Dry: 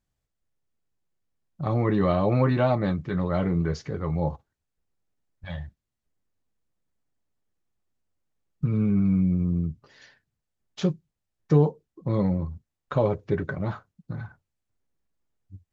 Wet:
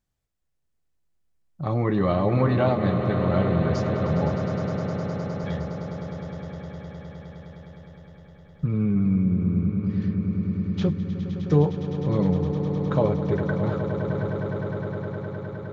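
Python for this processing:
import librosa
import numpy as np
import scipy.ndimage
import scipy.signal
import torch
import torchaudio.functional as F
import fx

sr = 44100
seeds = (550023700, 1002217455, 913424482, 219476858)

p1 = fx.lowpass(x, sr, hz=4200.0, slope=12, at=(8.65, 10.88))
y = p1 + fx.echo_swell(p1, sr, ms=103, loudest=8, wet_db=-12.0, dry=0)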